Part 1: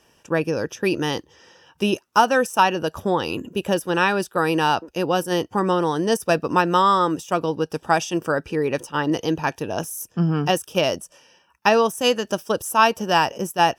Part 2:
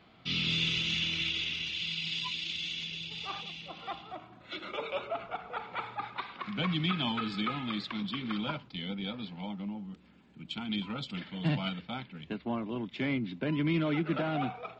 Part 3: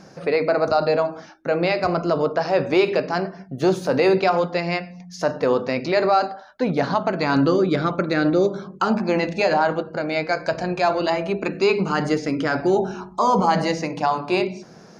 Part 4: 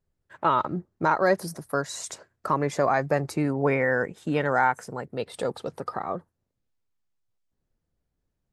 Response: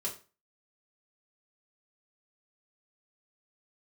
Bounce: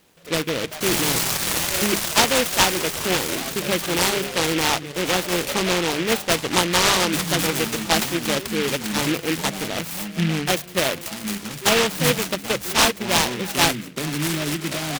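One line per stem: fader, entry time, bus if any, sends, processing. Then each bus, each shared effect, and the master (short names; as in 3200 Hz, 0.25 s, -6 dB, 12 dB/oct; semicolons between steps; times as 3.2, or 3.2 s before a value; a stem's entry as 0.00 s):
-1.5 dB, 0.00 s, no send, high shelf 9500 Hz +7 dB; notches 50/100/150/200 Hz
+1.5 dB, 0.55 s, send -8 dB, synth low-pass 2500 Hz, resonance Q 2.8
-18.5 dB, 0.00 s, no send, dry
-14.5 dB, 0.50 s, send -4 dB, dry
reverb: on, RT60 0.35 s, pre-delay 3 ms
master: noise-modulated delay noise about 2200 Hz, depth 0.21 ms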